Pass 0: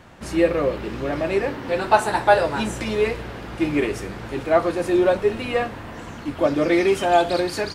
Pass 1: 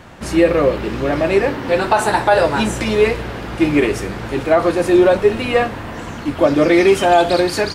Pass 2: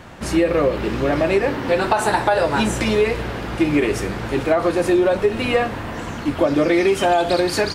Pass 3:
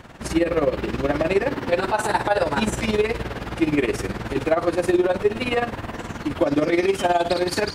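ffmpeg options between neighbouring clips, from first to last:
ffmpeg -i in.wav -af "alimiter=level_in=9dB:limit=-1dB:release=50:level=0:latency=1,volume=-2dB" out.wav
ffmpeg -i in.wav -af "acompressor=threshold=-13dB:ratio=6" out.wav
ffmpeg -i in.wav -af "tremolo=f=19:d=0.73" out.wav

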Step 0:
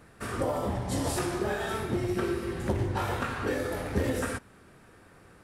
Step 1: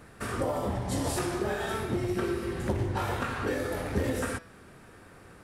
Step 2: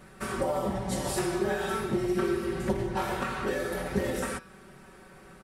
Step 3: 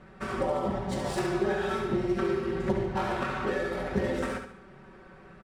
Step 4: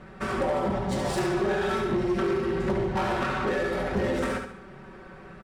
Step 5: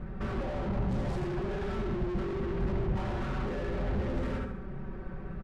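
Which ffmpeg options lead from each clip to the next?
ffmpeg -i in.wav -filter_complex "[0:a]bandreject=frequency=165.2:width_type=h:width=4,bandreject=frequency=330.4:width_type=h:width=4,bandreject=frequency=495.6:width_type=h:width=4,bandreject=frequency=660.8:width_type=h:width=4,bandreject=frequency=826:width_type=h:width=4,bandreject=frequency=991.2:width_type=h:width=4,bandreject=frequency=1156.4:width_type=h:width=4,bandreject=frequency=1321.6:width_type=h:width=4,bandreject=frequency=1486.8:width_type=h:width=4,bandreject=frequency=1652:width_type=h:width=4,bandreject=frequency=1817.2:width_type=h:width=4,bandreject=frequency=1982.4:width_type=h:width=4,bandreject=frequency=2147.6:width_type=h:width=4,bandreject=frequency=2312.8:width_type=h:width=4,bandreject=frequency=2478:width_type=h:width=4,bandreject=frequency=2643.2:width_type=h:width=4,bandreject=frequency=2808.4:width_type=h:width=4,bandreject=frequency=2973.6:width_type=h:width=4,bandreject=frequency=3138.8:width_type=h:width=4,bandreject=frequency=3304:width_type=h:width=4,bandreject=frequency=3469.2:width_type=h:width=4,bandreject=frequency=3634.4:width_type=h:width=4,bandreject=frequency=3799.6:width_type=h:width=4,bandreject=frequency=3964.8:width_type=h:width=4,bandreject=frequency=4130:width_type=h:width=4,bandreject=frequency=4295.2:width_type=h:width=4,bandreject=frequency=4460.4:width_type=h:width=4,bandreject=frequency=4625.6:width_type=h:width=4,bandreject=frequency=4790.8:width_type=h:width=4,bandreject=frequency=4956:width_type=h:width=4,bandreject=frequency=5121.2:width_type=h:width=4,bandreject=frequency=5286.4:width_type=h:width=4,bandreject=frequency=5451.6:width_type=h:width=4,bandreject=frequency=5616.8:width_type=h:width=4,bandreject=frequency=5782:width_type=h:width=4,asplit=2[link_01][link_02];[link_02]acompressor=threshold=-38dB:ratio=6,volume=0dB[link_03];[link_01][link_03]amix=inputs=2:normalize=0,volume=-2.5dB" out.wav
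ffmpeg -i in.wav -af "aecho=1:1:5.3:0.84,volume=-1.5dB" out.wav
ffmpeg -i in.wav -af "adynamicsmooth=sensitivity=7:basefreq=3300,aecho=1:1:71|142|213|284:0.447|0.17|0.0645|0.0245" out.wav
ffmpeg -i in.wav -af "asoftclip=type=tanh:threshold=-26dB,volume=5.5dB" out.wav
ffmpeg -i in.wav -af "volume=34.5dB,asoftclip=hard,volume=-34.5dB,aemphasis=mode=reproduction:type=riaa,volume=-3dB" out.wav

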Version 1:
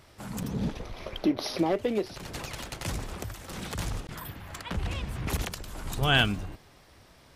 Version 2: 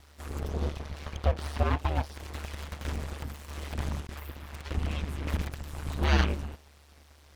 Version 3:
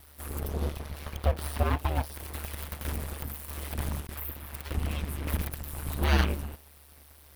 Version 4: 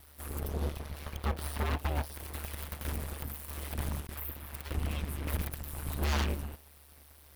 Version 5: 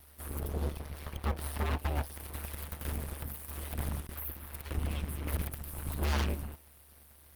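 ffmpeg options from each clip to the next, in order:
ffmpeg -i in.wav -filter_complex "[0:a]aeval=exprs='abs(val(0))':channel_layout=same,aeval=exprs='val(0)*sin(2*PI*73*n/s)':channel_layout=same,acrossover=split=3600[link_01][link_02];[link_02]acompressor=threshold=-51dB:ratio=4:attack=1:release=60[link_03];[link_01][link_03]amix=inputs=2:normalize=0,volume=3dB" out.wav
ffmpeg -i in.wav -af "aexciter=amount=3.2:drive=8.9:freq=9300" out.wav
ffmpeg -i in.wav -af "aeval=exprs='0.1*(abs(mod(val(0)/0.1+3,4)-2)-1)':channel_layout=same,volume=-2.5dB" out.wav
ffmpeg -i in.wav -filter_complex "[0:a]acrossover=split=630|3100[link_01][link_02][link_03];[link_01]crystalizer=i=3:c=0[link_04];[link_04][link_02][link_03]amix=inputs=3:normalize=0" -ar 48000 -c:a libopus -b:a 32k out.opus

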